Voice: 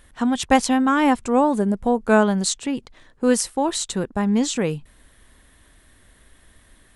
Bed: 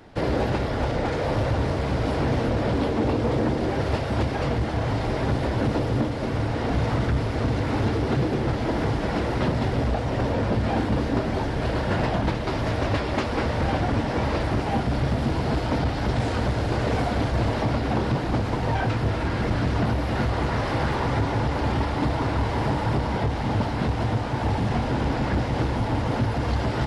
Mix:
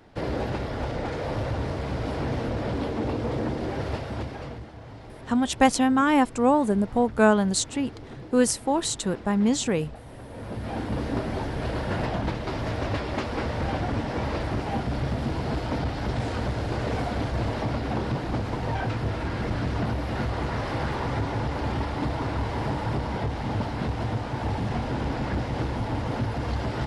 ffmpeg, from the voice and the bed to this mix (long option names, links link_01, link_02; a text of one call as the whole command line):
ffmpeg -i stem1.wav -i stem2.wav -filter_complex "[0:a]adelay=5100,volume=-2.5dB[link_01];[1:a]volume=9dB,afade=type=out:start_time=3.85:duration=0.87:silence=0.223872,afade=type=in:start_time=10.28:duration=0.81:silence=0.199526[link_02];[link_01][link_02]amix=inputs=2:normalize=0" out.wav